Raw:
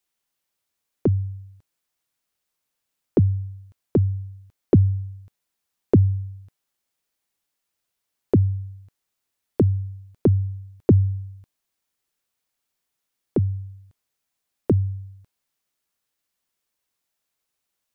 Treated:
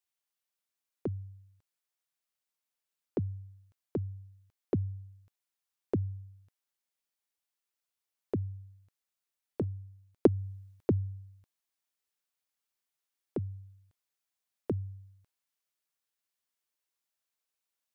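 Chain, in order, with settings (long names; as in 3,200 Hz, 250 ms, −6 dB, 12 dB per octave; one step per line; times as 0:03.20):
0:09.61–0:10.27: transient designer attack +11 dB, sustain −1 dB
speech leveller within 4 dB 0.5 s
low-shelf EQ 400 Hz −8 dB
level −5 dB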